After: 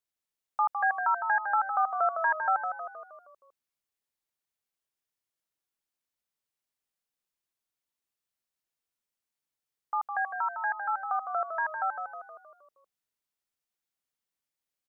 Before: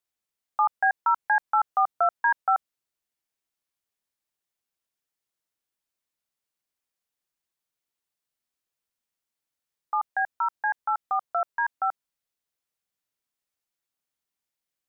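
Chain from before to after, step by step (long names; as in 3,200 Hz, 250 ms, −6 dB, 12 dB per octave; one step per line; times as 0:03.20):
echo with shifted repeats 157 ms, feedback 51%, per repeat −37 Hz, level −7 dB
level −4 dB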